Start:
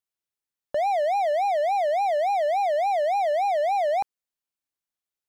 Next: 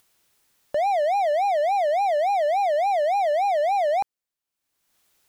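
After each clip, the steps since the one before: upward compressor, threshold -48 dBFS; trim +1.5 dB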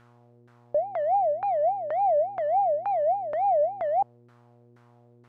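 zero-crossing glitches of -32.5 dBFS; mains buzz 120 Hz, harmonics 22, -51 dBFS -6 dB/octave; LFO low-pass saw down 2.1 Hz 350–1500 Hz; trim -7 dB

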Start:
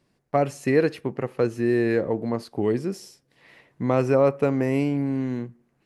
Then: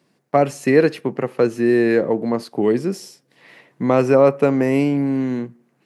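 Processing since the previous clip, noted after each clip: high-pass 140 Hz 24 dB/octave; trim +6 dB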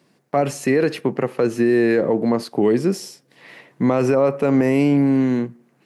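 peak limiter -12 dBFS, peak gain reduction 10.5 dB; trim +3.5 dB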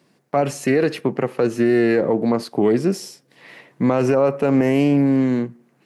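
loudspeaker Doppler distortion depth 0.11 ms

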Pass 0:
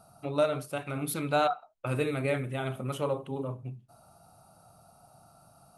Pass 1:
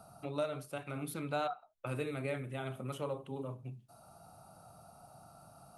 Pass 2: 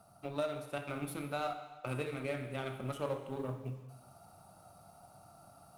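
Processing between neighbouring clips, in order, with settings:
three bands compressed up and down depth 40%; trim -7.5 dB
companding laws mixed up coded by A; gain riding 0.5 s; gated-style reverb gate 450 ms falling, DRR 6.5 dB; trim +2 dB

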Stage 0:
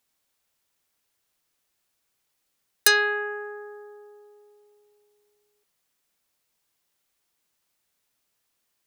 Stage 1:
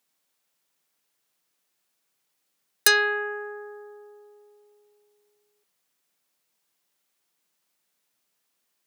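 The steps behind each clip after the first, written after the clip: high-pass 130 Hz 24 dB/octave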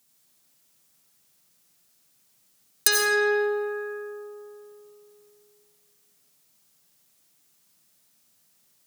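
tone controls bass +13 dB, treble +9 dB; in parallel at +1 dB: compressor with a negative ratio -27 dBFS; on the sum: algorithmic reverb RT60 2 s, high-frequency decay 0.6×, pre-delay 45 ms, DRR -0.5 dB; trim -8 dB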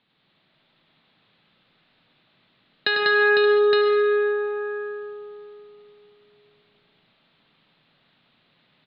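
steep low-pass 4 kHz 72 dB/octave; compression 2.5:1, threshold -30 dBFS, peak gain reduction 7.5 dB; on a send: multi-tap echo 98/195/503/575/865 ms -6/-3.5/-5/-13.5/-3.5 dB; on the sum: trim +8 dB

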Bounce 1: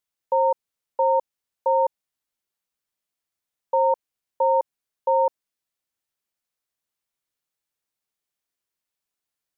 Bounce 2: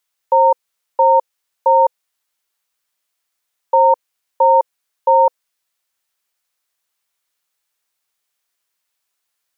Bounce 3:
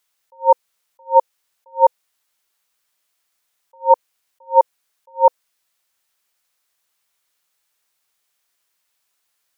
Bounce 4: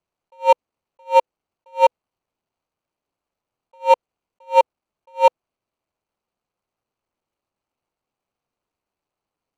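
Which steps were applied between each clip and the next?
FFT filter 260 Hz 0 dB, 500 Hz +6 dB, 1.2 kHz +11 dB
attacks held to a fixed rise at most 330 dB/s; trim +3.5 dB
median filter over 25 samples

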